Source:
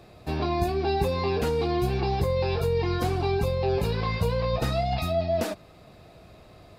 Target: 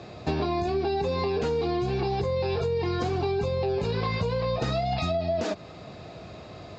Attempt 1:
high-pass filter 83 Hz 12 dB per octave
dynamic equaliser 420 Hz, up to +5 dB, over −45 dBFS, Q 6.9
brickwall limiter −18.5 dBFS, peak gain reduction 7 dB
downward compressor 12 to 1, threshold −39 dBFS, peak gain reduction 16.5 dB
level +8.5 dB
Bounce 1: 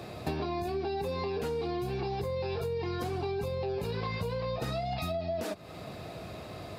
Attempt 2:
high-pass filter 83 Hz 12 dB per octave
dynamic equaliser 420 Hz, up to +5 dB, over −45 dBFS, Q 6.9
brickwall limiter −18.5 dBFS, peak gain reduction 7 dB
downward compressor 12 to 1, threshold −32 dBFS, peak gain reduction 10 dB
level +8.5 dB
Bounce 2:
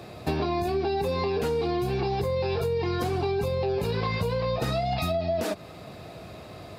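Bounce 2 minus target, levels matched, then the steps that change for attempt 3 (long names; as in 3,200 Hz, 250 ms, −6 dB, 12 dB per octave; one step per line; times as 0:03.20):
8,000 Hz band +3.5 dB
add after dynamic equaliser: Chebyshev low-pass filter 7,100 Hz, order 5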